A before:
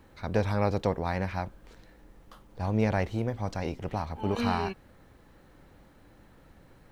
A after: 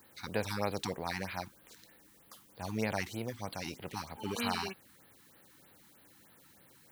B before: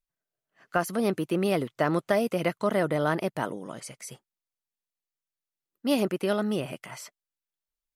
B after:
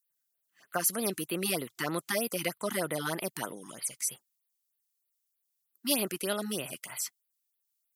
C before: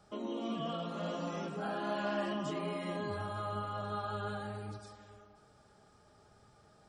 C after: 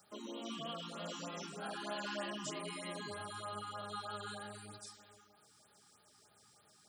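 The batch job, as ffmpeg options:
-af "highpass=120,crystalizer=i=7:c=0,afftfilt=real='re*(1-between(b*sr/1024,500*pow(7200/500,0.5+0.5*sin(2*PI*3.2*pts/sr))/1.41,500*pow(7200/500,0.5+0.5*sin(2*PI*3.2*pts/sr))*1.41))':imag='im*(1-between(b*sr/1024,500*pow(7200/500,0.5+0.5*sin(2*PI*3.2*pts/sr))/1.41,500*pow(7200/500,0.5+0.5*sin(2*PI*3.2*pts/sr))*1.41))':win_size=1024:overlap=0.75,volume=0.398"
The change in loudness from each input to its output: -7.0 LU, -4.5 LU, -5.5 LU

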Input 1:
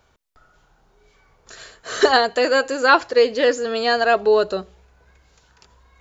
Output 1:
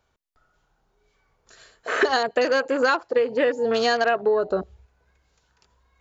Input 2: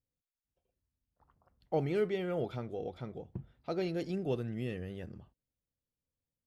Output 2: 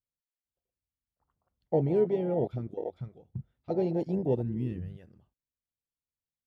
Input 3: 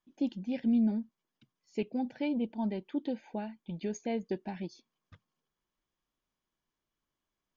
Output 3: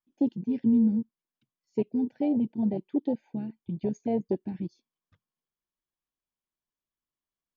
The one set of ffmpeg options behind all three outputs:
-af "afwtdn=0.0398,acompressor=threshold=0.0631:ratio=10,volume=2.11"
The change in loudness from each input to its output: -4.5 LU, +6.0 LU, +5.5 LU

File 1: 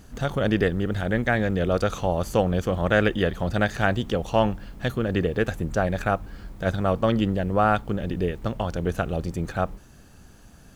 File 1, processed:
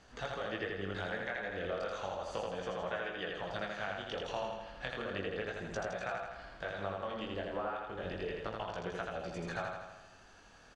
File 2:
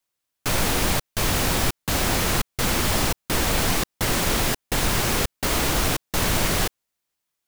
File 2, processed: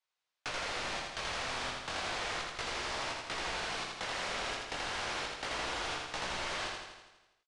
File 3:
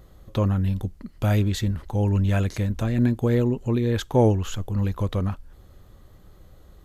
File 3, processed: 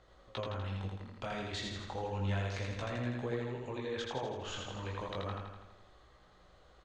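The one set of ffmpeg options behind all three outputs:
-filter_complex "[0:a]acrossover=split=480 5700:gain=0.178 1 0.126[s0][s1][s2];[s0][s1][s2]amix=inputs=3:normalize=0,acompressor=threshold=0.0224:ratio=12,flanger=delay=16:depth=7.8:speed=0.33,asplit=2[s3][s4];[s4]aecho=0:1:82|164|246|328|410|492|574|656|738:0.708|0.425|0.255|0.153|0.0917|0.055|0.033|0.0198|0.0119[s5];[s3][s5]amix=inputs=2:normalize=0,aresample=22050,aresample=44100"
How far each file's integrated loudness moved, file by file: -14.5 LU, -14.0 LU, -15.5 LU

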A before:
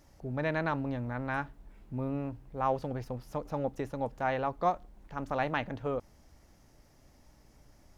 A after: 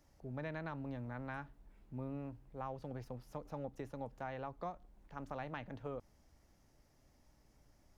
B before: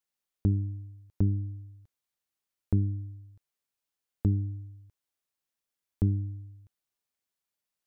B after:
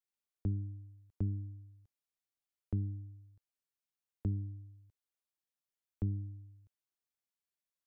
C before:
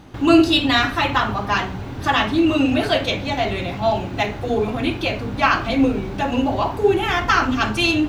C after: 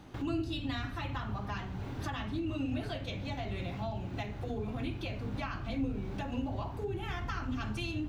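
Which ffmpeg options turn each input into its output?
-filter_complex "[0:a]acrossover=split=190[s0][s1];[s1]acompressor=threshold=0.0251:ratio=4[s2];[s0][s2]amix=inputs=2:normalize=0,volume=0.376"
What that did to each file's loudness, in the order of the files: -11.5 LU, -9.0 LU, -18.0 LU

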